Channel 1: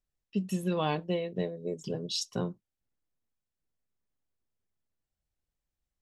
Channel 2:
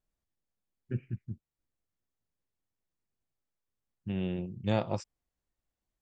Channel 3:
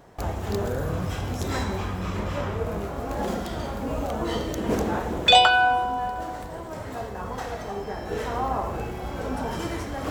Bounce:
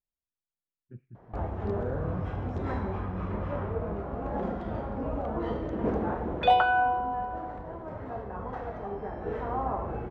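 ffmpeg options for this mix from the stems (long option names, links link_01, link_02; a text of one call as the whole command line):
ffmpeg -i stem1.wav -i stem2.wav -i stem3.wav -filter_complex "[1:a]volume=-12.5dB[link_01];[2:a]adelay=1150,volume=-3.5dB[link_02];[link_01][link_02]amix=inputs=2:normalize=0,lowpass=1400" out.wav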